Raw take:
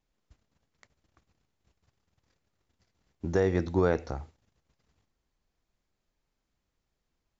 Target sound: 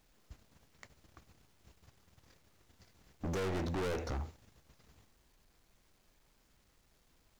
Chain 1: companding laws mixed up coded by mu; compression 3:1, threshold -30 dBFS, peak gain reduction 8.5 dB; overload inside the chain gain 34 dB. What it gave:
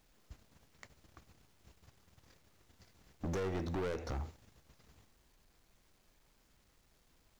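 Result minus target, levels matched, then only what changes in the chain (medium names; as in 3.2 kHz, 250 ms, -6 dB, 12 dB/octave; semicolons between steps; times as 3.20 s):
compression: peak gain reduction +8.5 dB
remove: compression 3:1, threshold -30 dBFS, peak gain reduction 8.5 dB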